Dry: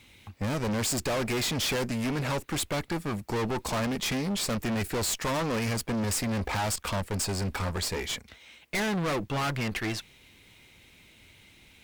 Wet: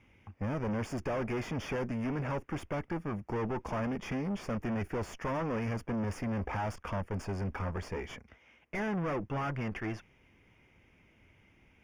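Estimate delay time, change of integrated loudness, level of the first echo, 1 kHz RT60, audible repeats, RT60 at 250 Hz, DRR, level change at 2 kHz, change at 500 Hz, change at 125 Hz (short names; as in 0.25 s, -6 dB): none, -6.0 dB, none, none, none, none, none, -8.0 dB, -4.0 dB, -4.0 dB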